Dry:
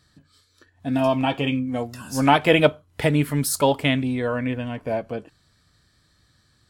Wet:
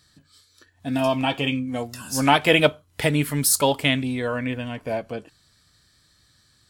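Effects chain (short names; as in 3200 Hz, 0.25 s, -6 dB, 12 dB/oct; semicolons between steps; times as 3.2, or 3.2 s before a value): high shelf 2400 Hz +8.5 dB; gain -2 dB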